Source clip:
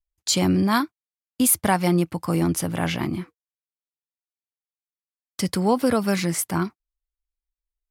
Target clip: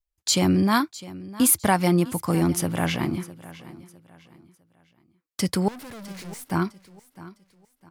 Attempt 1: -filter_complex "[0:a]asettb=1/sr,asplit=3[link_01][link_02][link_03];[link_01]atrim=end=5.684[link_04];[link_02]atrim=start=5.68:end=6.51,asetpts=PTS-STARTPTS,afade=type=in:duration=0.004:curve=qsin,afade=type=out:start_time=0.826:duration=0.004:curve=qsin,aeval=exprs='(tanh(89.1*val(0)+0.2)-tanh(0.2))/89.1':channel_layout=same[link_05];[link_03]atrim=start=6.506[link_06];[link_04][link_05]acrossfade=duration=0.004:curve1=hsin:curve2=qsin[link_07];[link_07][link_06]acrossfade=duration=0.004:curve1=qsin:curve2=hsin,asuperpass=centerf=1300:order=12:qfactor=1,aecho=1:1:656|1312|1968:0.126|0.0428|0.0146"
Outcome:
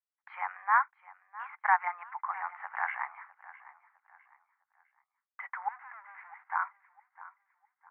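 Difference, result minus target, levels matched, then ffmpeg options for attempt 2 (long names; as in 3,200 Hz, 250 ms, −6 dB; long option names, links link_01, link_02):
1,000 Hz band +8.5 dB
-filter_complex "[0:a]asettb=1/sr,asplit=3[link_01][link_02][link_03];[link_01]atrim=end=5.684[link_04];[link_02]atrim=start=5.68:end=6.51,asetpts=PTS-STARTPTS,afade=type=in:duration=0.004:curve=qsin,afade=type=out:start_time=0.826:duration=0.004:curve=qsin,aeval=exprs='(tanh(89.1*val(0)+0.2)-tanh(0.2))/89.1':channel_layout=same[link_05];[link_03]atrim=start=6.506[link_06];[link_04][link_05]acrossfade=duration=0.004:curve1=hsin:curve2=qsin[link_07];[link_07][link_06]acrossfade=duration=0.004:curve1=qsin:curve2=hsin,aecho=1:1:656|1312|1968:0.126|0.0428|0.0146"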